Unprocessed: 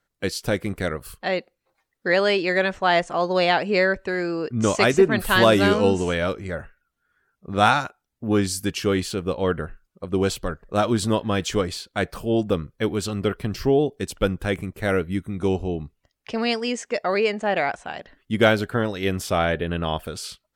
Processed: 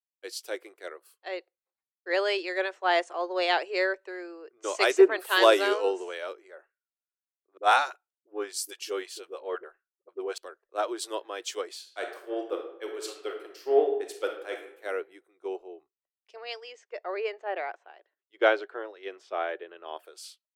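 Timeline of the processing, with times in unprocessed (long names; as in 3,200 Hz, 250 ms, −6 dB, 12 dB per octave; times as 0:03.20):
0:07.57–0:10.38: all-pass dispersion highs, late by 57 ms, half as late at 350 Hz
0:11.78–0:14.82: thrown reverb, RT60 1.2 s, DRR 2 dB
0:16.36–0:19.97: high-frequency loss of the air 140 metres
whole clip: elliptic high-pass filter 350 Hz, stop band 40 dB; multiband upward and downward expander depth 100%; level −8.5 dB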